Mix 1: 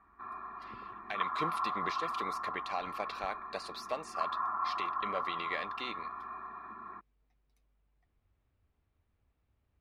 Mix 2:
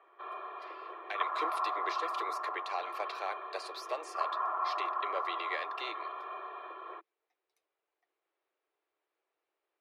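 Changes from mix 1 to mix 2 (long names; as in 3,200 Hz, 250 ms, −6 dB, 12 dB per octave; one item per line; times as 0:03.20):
background: remove phaser with its sweep stopped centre 1,300 Hz, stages 4
master: add Butterworth high-pass 330 Hz 72 dB per octave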